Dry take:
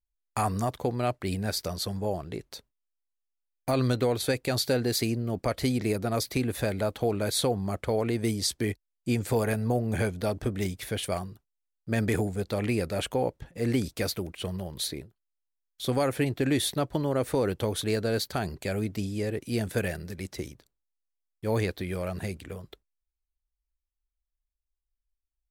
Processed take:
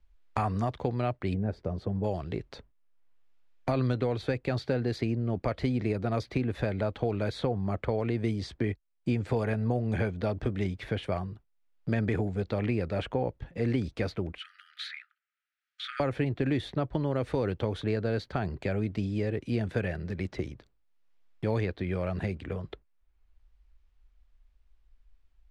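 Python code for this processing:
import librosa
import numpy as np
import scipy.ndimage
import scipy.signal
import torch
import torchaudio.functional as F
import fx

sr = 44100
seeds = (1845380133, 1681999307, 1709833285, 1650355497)

y = fx.curve_eq(x, sr, hz=(460.0, 2600.0, 4200.0), db=(0, -16, -23), at=(1.33, 2.03), fade=0.02)
y = fx.brickwall_highpass(y, sr, low_hz=1200.0, at=(14.38, 16.0))
y = scipy.signal.sosfilt(scipy.signal.butter(2, 3000.0, 'lowpass', fs=sr, output='sos'), y)
y = fx.low_shelf(y, sr, hz=110.0, db=6.5)
y = fx.band_squash(y, sr, depth_pct=70)
y = y * 10.0 ** (-3.0 / 20.0)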